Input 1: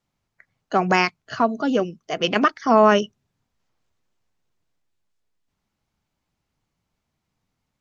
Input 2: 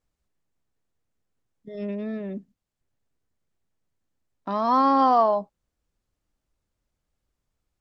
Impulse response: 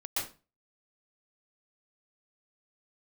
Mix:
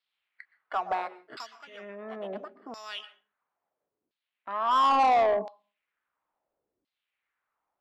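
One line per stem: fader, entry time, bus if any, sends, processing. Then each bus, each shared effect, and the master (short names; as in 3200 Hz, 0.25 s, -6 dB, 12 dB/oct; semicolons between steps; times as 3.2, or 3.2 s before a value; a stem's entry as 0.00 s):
1.41 s -9.5 dB -> 1.68 s -21.5 dB -> 2.56 s -21.5 dB -> 2.81 s -14.5 dB, 0.00 s, send -19.5 dB, high shelf 2000 Hz +10 dB; compressor 2:1, threshold -23 dBFS, peak gain reduction 8.5 dB; sample-and-hold 7×
-4.0 dB, 0.00 s, send -17 dB, tilt -3 dB/oct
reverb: on, RT60 0.30 s, pre-delay 0.114 s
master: high shelf 5700 Hz -9 dB; LFO band-pass saw down 0.73 Hz 310–4500 Hz; overdrive pedal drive 18 dB, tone 3700 Hz, clips at -16 dBFS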